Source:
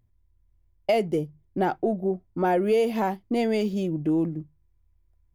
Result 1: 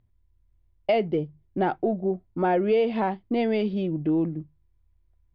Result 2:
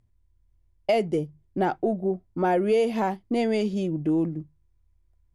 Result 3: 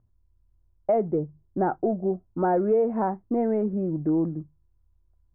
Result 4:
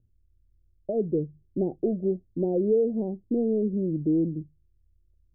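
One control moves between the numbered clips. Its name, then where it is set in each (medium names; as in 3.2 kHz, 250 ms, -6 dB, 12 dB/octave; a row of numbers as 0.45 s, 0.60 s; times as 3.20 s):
steep low-pass, frequency: 4.2 kHz, 11 kHz, 1.5 kHz, 520 Hz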